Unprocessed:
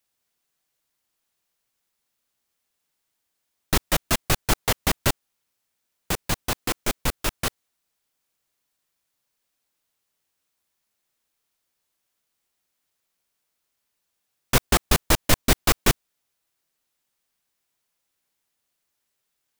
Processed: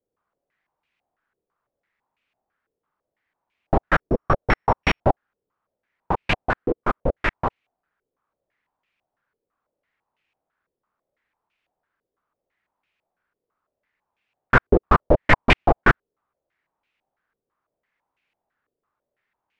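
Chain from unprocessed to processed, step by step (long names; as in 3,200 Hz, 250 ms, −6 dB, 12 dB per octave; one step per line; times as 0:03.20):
0:03.97–0:05.03: samples sorted by size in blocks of 8 samples
tape wow and flutter 22 cents
low-pass on a step sequencer 6 Hz 450–2,500 Hz
level +2 dB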